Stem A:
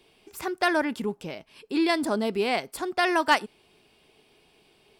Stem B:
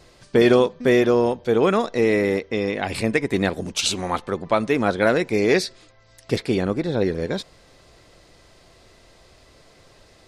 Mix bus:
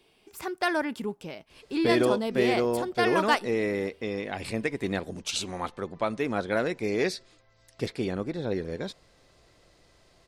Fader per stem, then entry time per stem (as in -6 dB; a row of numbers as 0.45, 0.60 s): -3.0, -8.5 dB; 0.00, 1.50 s